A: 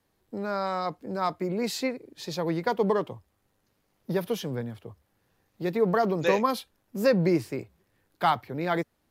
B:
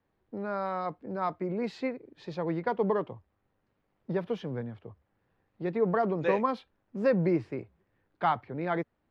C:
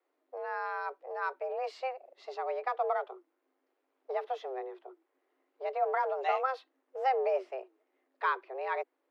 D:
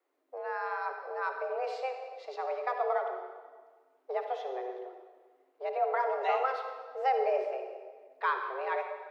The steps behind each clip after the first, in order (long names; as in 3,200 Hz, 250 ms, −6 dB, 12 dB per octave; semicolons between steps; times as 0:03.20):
low-pass filter 2,300 Hz 12 dB per octave; level −3 dB
frequency shifter +260 Hz; level −3.5 dB
convolution reverb RT60 1.5 s, pre-delay 48 ms, DRR 5 dB